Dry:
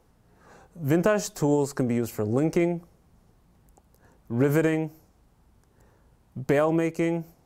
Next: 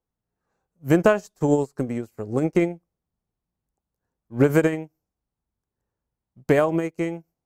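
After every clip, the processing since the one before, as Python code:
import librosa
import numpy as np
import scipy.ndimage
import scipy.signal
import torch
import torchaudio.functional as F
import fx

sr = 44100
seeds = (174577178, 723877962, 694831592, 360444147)

y = fx.upward_expand(x, sr, threshold_db=-39.0, expansion=2.5)
y = y * librosa.db_to_amplitude(7.0)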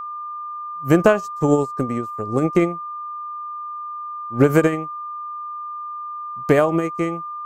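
y = x + 10.0 ** (-31.0 / 20.0) * np.sin(2.0 * np.pi * 1200.0 * np.arange(len(x)) / sr)
y = y * librosa.db_to_amplitude(3.0)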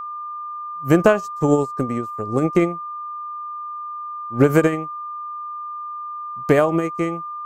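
y = x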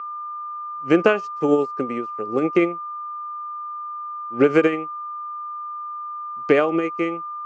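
y = fx.cabinet(x, sr, low_hz=340.0, low_slope=12, high_hz=4600.0, hz=(650.0, 980.0, 1700.0, 2600.0, 3900.0), db=(-8, -10, -4, 4, -7))
y = y * librosa.db_to_amplitude(3.0)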